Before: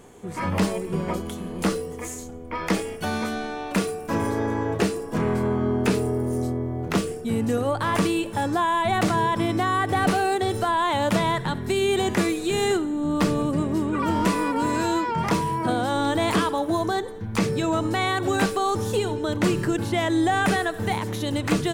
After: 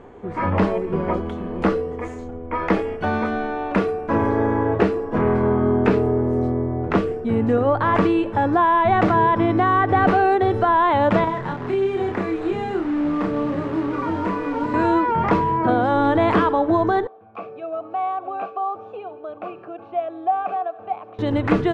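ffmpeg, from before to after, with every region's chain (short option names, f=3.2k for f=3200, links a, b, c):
-filter_complex "[0:a]asettb=1/sr,asplit=3[a][b][c];[a]atrim=end=11.244[d];[b]atrim=start=11.24:end=14.74,asetpts=PTS-STARTPTS,afade=t=in:d=0.004:c=qsin,afade=t=out:st=3.496:d=0.004:c=qsin,acrusher=bits=6:dc=4:mix=0:aa=0.000001,acrossover=split=120|310|2500|6300[e][f][g][h][i];[e]acompressor=threshold=-49dB:ratio=3[j];[f]acompressor=threshold=-36dB:ratio=3[k];[g]acompressor=threshold=-34dB:ratio=3[l];[h]acompressor=threshold=-49dB:ratio=3[m];[i]acompressor=threshold=-44dB:ratio=3[n];[j][k][l][m][n]amix=inputs=5:normalize=0,asplit=2[o][p];[p]adelay=31,volume=-3dB[q];[o][q]amix=inputs=2:normalize=0,atrim=end_sample=154350[r];[c]atrim=start=14.736[s];[d][r]acrossfade=d=0.004:c1=hsin:c2=qsin[t];[t][s]acrossfade=d=0.004:c1=qsin:c2=hsin,asettb=1/sr,asplit=3[u][v][w];[u]atrim=end=17.074[x];[v]atrim=start=17.07:end=21.19,asetpts=PTS-STARTPTS,afade=t=in:d=0.004:c=qsin,afade=t=out:st=4.116:d=0.004:c=qsin,asplit=3[y][z][aa];[y]bandpass=f=730:t=q:w=8,volume=0dB[ab];[z]bandpass=f=1.09k:t=q:w=8,volume=-6dB[ac];[aa]bandpass=f=2.44k:t=q:w=8,volume=-9dB[ad];[ab][ac][ad]amix=inputs=3:normalize=0,bandreject=f=970:w=7.7[ae];[w]atrim=start=21.186[af];[x][ae]acrossfade=d=0.004:c1=hsin:c2=qsin[ag];[ag][af]acrossfade=d=0.004:c1=qsin:c2=hsin,lowpass=1.7k,equalizer=f=160:t=o:w=0.82:g=-6.5,volume=6.5dB"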